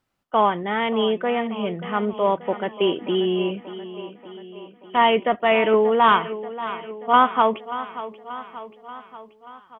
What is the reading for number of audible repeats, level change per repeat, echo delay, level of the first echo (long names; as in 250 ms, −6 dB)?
5, −4.5 dB, 583 ms, −14.0 dB